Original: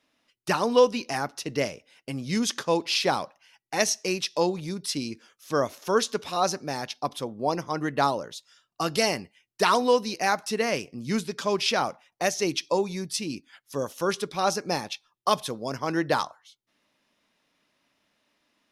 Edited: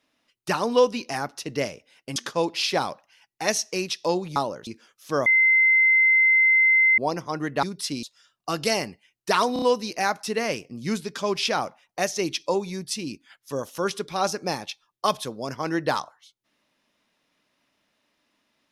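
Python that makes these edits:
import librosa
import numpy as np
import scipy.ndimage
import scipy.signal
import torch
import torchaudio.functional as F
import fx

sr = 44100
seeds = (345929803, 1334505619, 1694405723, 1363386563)

y = fx.edit(x, sr, fx.cut(start_s=2.16, length_s=0.32),
    fx.swap(start_s=4.68, length_s=0.4, other_s=8.04, other_length_s=0.31),
    fx.bleep(start_s=5.67, length_s=1.72, hz=2070.0, db=-14.5),
    fx.stutter(start_s=9.85, slice_s=0.03, count=4), tone=tone)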